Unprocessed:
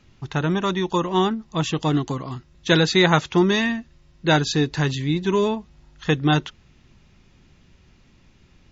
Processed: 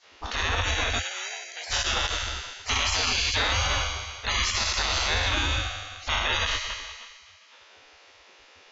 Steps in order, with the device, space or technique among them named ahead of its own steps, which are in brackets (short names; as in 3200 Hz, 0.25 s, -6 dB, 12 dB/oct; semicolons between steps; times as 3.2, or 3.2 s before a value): spectral trails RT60 1.91 s; 0.99–1.71 inverse Chebyshev high-pass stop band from 190 Hz, stop band 80 dB; spectral gate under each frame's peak -20 dB weak; car stereo with a boomy subwoofer (resonant low shelf 110 Hz +8 dB, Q 3; limiter -22 dBFS, peak gain reduction 10 dB); LPF 6600 Hz 24 dB/oct; gain +7 dB